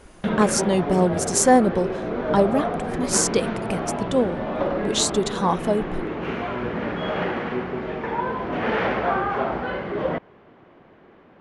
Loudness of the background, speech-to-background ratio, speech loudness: -26.5 LUFS, 4.0 dB, -22.5 LUFS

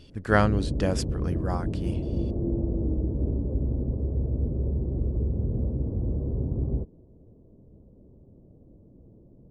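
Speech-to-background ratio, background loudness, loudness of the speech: 1.5 dB, -29.5 LUFS, -28.0 LUFS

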